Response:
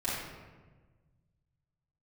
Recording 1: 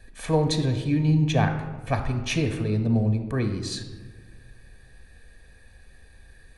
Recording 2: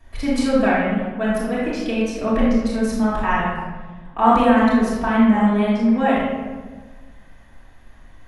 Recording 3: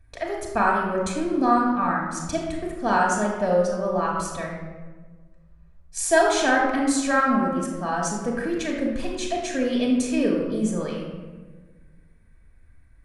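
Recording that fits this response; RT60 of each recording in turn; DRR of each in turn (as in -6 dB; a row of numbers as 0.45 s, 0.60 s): 2; 1.4 s, 1.3 s, 1.3 s; 6.5 dB, -9.5 dB, -1.5 dB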